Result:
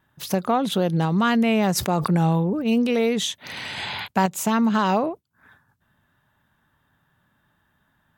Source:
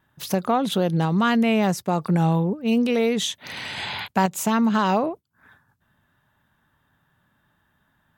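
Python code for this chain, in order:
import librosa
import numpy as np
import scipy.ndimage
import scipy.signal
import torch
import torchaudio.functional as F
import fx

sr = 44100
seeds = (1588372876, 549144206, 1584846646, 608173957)

y = fx.sustainer(x, sr, db_per_s=35.0, at=(1.75, 2.77), fade=0.02)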